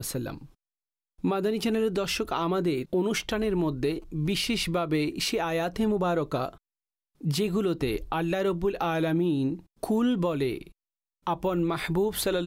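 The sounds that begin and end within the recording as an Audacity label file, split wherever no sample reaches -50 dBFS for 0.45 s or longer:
1.190000	6.580000	sound
7.210000	10.720000	sound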